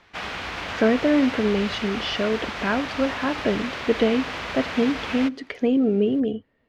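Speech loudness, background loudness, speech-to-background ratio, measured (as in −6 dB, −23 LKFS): −23.5 LKFS, −30.5 LKFS, 7.0 dB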